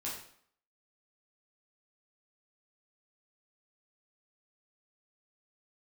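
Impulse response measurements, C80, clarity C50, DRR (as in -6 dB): 7.5 dB, 4.0 dB, -6.5 dB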